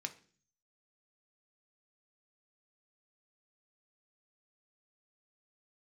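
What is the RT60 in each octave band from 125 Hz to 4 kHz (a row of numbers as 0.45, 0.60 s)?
0.80, 0.65, 0.50, 0.40, 0.45, 0.50 s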